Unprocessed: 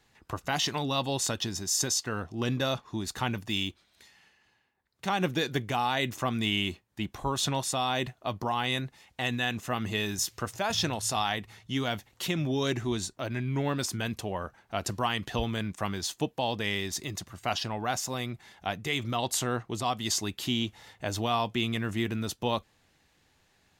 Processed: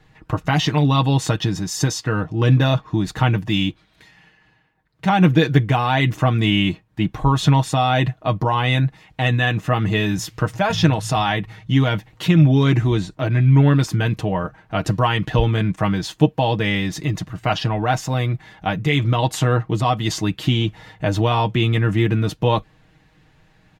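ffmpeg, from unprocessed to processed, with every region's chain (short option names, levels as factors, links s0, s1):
-filter_complex "[0:a]asettb=1/sr,asplit=3[s0][s1][s2];[s0]atrim=end=12.564[s3];[s1]atrim=start=12.56:end=13.15,asetpts=PTS-STARTPTS,afade=t=in:d=0.004:c=qsin,afade=t=out:st=0.586:d=0.004:c=qsin,acrossover=split=4000[s4][s5];[s5]acompressor=threshold=0.00447:ratio=4:attack=1:release=60[s6];[s4][s6]amix=inputs=2:normalize=0,highshelf=f=6100:g=5.5,asoftclip=type=hard:threshold=0.106[s7];[s2]atrim=start=13.146[s8];[s3][s7]acrossfade=d=0.004:c1=hsin:c2=qsin[s9];[s9][s8]acrossfade=d=0.004:c1=qsin:c2=hsin,bass=f=250:g=8,treble=f=4000:g=-12,aecho=1:1:6.4:0.65,volume=2.66"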